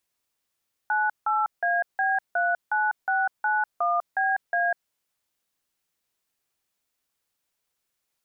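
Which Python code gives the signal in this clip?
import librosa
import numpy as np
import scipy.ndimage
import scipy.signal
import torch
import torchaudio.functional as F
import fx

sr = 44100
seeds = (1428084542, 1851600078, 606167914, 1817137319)

y = fx.dtmf(sr, digits='98AB39691BA', tone_ms=198, gap_ms=165, level_db=-23.5)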